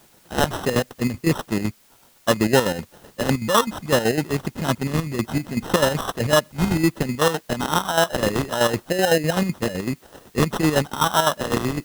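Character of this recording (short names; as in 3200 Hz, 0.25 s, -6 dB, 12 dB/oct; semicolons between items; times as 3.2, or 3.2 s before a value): aliases and images of a low sample rate 2300 Hz, jitter 0%; chopped level 7.9 Hz, depth 60%, duty 50%; a quantiser's noise floor 10-bit, dither triangular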